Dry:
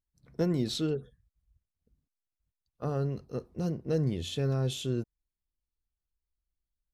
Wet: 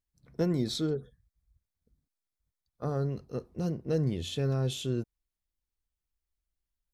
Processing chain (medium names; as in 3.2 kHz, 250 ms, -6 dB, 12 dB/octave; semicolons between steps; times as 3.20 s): 0.54–3.09 s: Butterworth band-stop 2.8 kHz, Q 4.3